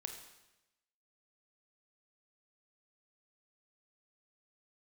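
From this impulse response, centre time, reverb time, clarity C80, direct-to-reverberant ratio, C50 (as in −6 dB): 26 ms, 0.95 s, 8.5 dB, 4.0 dB, 6.5 dB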